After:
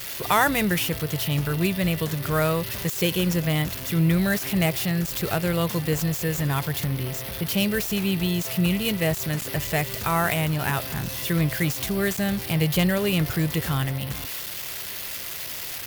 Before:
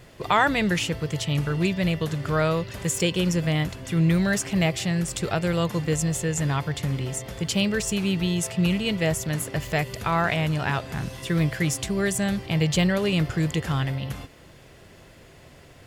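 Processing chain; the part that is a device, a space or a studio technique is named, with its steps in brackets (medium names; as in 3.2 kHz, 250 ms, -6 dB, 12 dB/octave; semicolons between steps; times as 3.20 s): 6.84–7.46 s: distance through air 96 m; budget class-D amplifier (dead-time distortion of 0.064 ms; zero-crossing glitches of -17.5 dBFS)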